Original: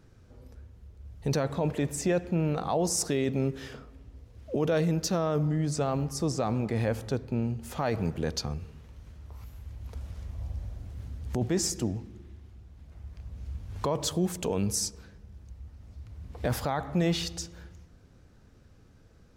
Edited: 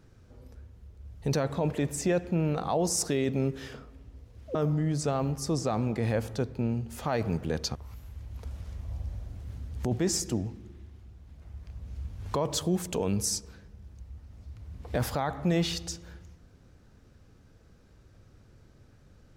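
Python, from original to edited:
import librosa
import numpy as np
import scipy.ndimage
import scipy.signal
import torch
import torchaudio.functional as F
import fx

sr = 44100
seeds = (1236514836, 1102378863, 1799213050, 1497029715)

y = fx.edit(x, sr, fx.cut(start_s=4.55, length_s=0.73),
    fx.cut(start_s=8.48, length_s=0.77), tone=tone)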